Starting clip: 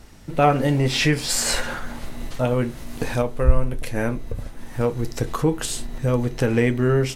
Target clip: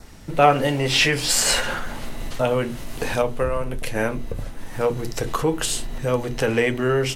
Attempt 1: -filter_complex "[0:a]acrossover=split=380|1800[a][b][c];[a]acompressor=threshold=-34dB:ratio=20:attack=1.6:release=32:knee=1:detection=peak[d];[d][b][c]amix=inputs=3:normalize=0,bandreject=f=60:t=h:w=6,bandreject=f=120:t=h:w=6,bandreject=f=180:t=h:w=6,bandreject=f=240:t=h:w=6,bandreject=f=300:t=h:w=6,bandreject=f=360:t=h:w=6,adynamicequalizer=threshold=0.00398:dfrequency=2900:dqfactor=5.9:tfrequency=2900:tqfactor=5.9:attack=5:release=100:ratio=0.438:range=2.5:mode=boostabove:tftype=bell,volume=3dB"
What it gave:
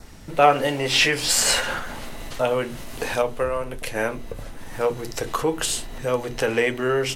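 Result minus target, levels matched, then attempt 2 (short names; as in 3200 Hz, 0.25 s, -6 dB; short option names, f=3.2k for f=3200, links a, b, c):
compressor: peak gain reduction +7.5 dB
-filter_complex "[0:a]acrossover=split=380|1800[a][b][c];[a]acompressor=threshold=-26dB:ratio=20:attack=1.6:release=32:knee=1:detection=peak[d];[d][b][c]amix=inputs=3:normalize=0,bandreject=f=60:t=h:w=6,bandreject=f=120:t=h:w=6,bandreject=f=180:t=h:w=6,bandreject=f=240:t=h:w=6,bandreject=f=300:t=h:w=6,bandreject=f=360:t=h:w=6,adynamicequalizer=threshold=0.00398:dfrequency=2900:dqfactor=5.9:tfrequency=2900:tqfactor=5.9:attack=5:release=100:ratio=0.438:range=2.5:mode=boostabove:tftype=bell,volume=3dB"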